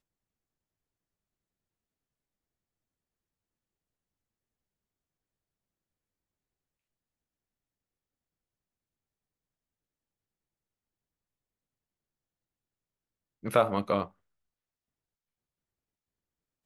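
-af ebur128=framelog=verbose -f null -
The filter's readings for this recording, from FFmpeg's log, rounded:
Integrated loudness:
  I:         -28.5 LUFS
  Threshold: -39.4 LUFS
Loudness range:
  LRA:         2.4 LU
  Threshold: -54.6 LUFS
  LRA low:   -36.6 LUFS
  LRA high:  -34.2 LUFS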